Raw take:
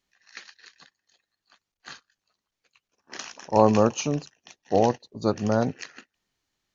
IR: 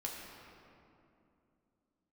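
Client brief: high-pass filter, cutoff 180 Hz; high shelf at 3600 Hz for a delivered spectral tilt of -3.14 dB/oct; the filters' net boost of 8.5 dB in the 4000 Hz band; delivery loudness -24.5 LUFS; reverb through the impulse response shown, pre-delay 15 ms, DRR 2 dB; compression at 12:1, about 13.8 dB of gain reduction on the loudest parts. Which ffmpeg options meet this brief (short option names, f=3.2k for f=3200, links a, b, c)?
-filter_complex "[0:a]highpass=180,highshelf=f=3.6k:g=3.5,equalizer=f=4k:t=o:g=8.5,acompressor=threshold=-27dB:ratio=12,asplit=2[a][b];[1:a]atrim=start_sample=2205,adelay=15[c];[b][c]afir=irnorm=-1:irlink=0,volume=-2.5dB[d];[a][d]amix=inputs=2:normalize=0,volume=9.5dB"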